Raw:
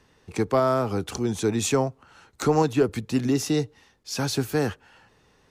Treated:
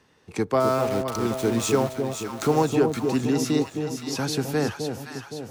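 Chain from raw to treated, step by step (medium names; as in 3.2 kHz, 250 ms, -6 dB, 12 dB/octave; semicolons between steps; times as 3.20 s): high-pass 190 Hz 6 dB/octave; tone controls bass +3 dB, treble -1 dB; 0.60–2.65 s: small samples zeroed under -31 dBFS; echo whose repeats swap between lows and highs 259 ms, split 830 Hz, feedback 73%, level -4.5 dB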